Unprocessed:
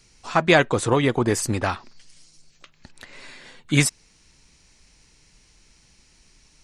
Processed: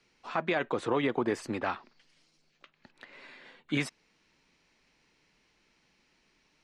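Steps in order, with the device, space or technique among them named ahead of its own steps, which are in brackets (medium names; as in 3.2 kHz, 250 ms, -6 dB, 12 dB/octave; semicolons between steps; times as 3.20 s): DJ mixer with the lows and highs turned down (three-band isolator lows -17 dB, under 180 Hz, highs -19 dB, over 3.9 kHz; peak limiter -12.5 dBFS, peak gain reduction 10.5 dB); trim -6 dB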